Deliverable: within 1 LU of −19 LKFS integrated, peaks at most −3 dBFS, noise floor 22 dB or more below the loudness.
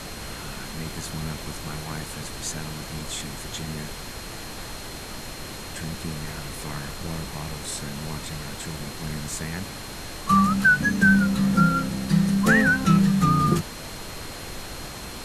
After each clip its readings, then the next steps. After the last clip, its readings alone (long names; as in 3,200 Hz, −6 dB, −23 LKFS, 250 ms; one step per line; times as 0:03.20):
interfering tone 4,200 Hz; level of the tone −45 dBFS; background noise floor −37 dBFS; target noise floor −47 dBFS; integrated loudness −24.5 LKFS; sample peak −5.0 dBFS; target loudness −19.0 LKFS
→ notch filter 4,200 Hz, Q 30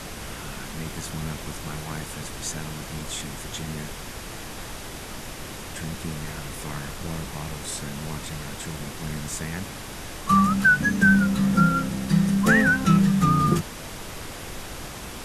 interfering tone none found; background noise floor −37 dBFS; target noise floor −47 dBFS
→ noise reduction from a noise print 10 dB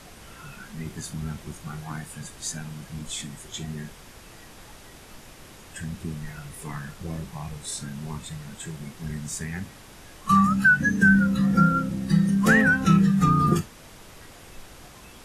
background noise floor −47 dBFS; integrated loudness −23.0 LKFS; sample peak −5.5 dBFS; target loudness −19.0 LKFS
→ level +4 dB
brickwall limiter −3 dBFS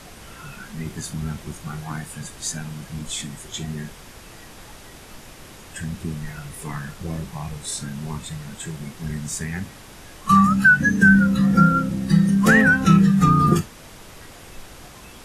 integrated loudness −19.0 LKFS; sample peak −3.0 dBFS; background noise floor −43 dBFS